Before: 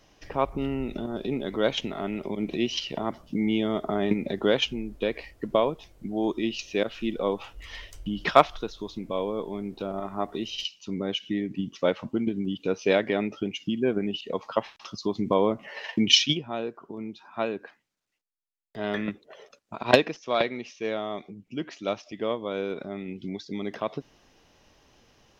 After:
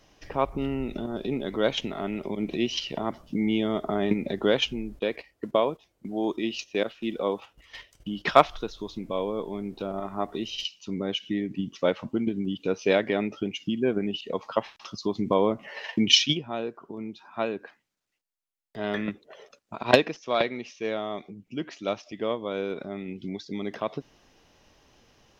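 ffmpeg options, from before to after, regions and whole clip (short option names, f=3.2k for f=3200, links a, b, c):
-filter_complex "[0:a]asettb=1/sr,asplit=3[a][b][c];[a]atrim=end=4.994[d];[b]atrim=start=4.99:end=8.28,asetpts=PTS-STARTPTS,afade=t=in:d=0.004:c=qsin,afade=t=out:st=3.286:d=0.004:c=qsin,agate=range=-11dB:threshold=-41dB:ratio=16:release=100:detection=peak,highpass=f=170:p=1[e];[c]atrim=start=8.276[f];[d][e]acrossfade=d=0.004:c1=hsin:c2=qsin[g];[g][f]acrossfade=d=0.004:c1=qsin:c2=hsin"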